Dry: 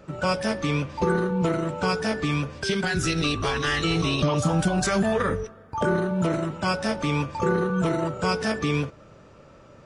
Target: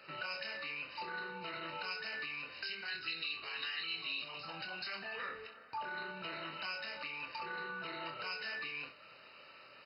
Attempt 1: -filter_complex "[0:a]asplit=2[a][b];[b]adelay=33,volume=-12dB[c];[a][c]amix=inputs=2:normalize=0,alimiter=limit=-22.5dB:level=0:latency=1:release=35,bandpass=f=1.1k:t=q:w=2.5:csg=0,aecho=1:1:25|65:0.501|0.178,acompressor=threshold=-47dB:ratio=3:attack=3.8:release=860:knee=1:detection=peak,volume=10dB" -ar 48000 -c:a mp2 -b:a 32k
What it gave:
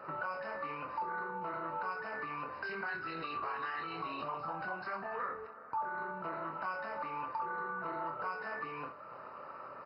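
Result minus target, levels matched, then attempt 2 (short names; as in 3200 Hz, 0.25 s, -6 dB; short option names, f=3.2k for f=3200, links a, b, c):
4000 Hz band -15.5 dB
-filter_complex "[0:a]asplit=2[a][b];[b]adelay=33,volume=-12dB[c];[a][c]amix=inputs=2:normalize=0,alimiter=limit=-22.5dB:level=0:latency=1:release=35,bandpass=f=3.2k:t=q:w=2.5:csg=0,aecho=1:1:25|65:0.501|0.178,acompressor=threshold=-47dB:ratio=3:attack=3.8:release=860:knee=1:detection=peak,volume=10dB" -ar 48000 -c:a mp2 -b:a 32k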